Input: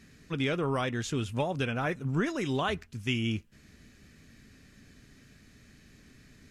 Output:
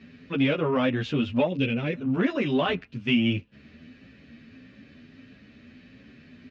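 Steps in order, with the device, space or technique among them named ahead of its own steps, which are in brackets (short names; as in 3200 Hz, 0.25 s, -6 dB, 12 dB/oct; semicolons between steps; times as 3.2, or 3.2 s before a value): barber-pole flanger into a guitar amplifier (endless flanger 10.1 ms +1.6 Hz; soft clip -24 dBFS, distortion -21 dB; speaker cabinet 76–4100 Hz, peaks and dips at 250 Hz +9 dB, 560 Hz +7 dB, 2700 Hz +6 dB); 1.47–1.94 band shelf 1000 Hz -11 dB; gain +6.5 dB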